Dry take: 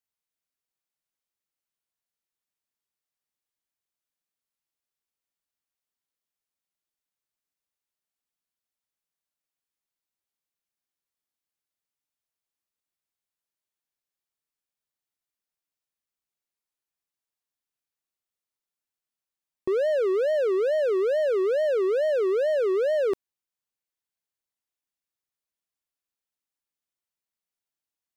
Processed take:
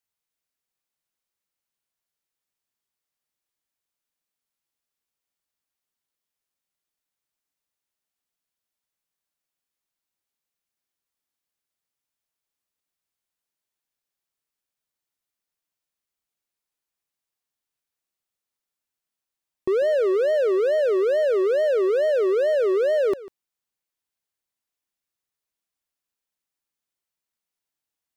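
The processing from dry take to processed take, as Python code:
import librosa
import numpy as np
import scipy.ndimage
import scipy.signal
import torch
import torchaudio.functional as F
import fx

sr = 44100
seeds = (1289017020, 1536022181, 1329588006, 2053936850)

y = x + 10.0 ** (-18.5 / 20.0) * np.pad(x, (int(146 * sr / 1000.0), 0))[:len(x)]
y = y * 10.0 ** (3.0 / 20.0)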